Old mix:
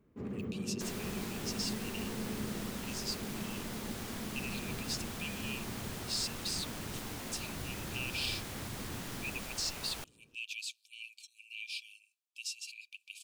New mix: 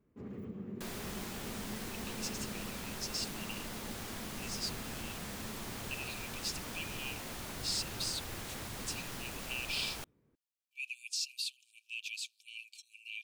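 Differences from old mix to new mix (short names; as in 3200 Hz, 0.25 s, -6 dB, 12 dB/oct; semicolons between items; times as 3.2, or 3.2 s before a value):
speech: entry +1.55 s; first sound -5.0 dB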